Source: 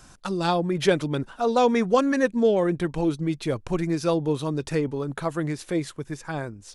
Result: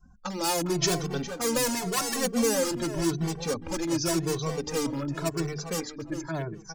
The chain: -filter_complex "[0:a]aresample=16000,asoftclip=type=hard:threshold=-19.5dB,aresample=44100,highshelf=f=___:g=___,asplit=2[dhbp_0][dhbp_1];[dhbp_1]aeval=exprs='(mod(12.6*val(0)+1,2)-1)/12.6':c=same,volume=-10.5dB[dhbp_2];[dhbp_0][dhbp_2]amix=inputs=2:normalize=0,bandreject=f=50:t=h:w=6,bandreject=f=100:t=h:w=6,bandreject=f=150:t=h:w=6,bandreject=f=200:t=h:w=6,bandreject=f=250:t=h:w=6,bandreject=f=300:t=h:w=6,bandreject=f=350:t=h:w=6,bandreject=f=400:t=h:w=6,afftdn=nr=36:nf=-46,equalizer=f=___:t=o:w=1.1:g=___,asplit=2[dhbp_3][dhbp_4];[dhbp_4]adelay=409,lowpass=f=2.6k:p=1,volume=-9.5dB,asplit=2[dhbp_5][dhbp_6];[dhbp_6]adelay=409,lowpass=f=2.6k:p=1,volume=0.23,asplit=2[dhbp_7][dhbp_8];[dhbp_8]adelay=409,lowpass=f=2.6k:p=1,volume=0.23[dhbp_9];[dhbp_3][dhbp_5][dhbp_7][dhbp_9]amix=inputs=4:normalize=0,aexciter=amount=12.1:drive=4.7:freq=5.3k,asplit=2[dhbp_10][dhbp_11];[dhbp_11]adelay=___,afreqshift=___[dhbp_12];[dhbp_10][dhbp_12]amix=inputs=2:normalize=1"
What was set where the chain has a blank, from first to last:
2.5k, -10, 3.6k, 7, 2.2, 0.89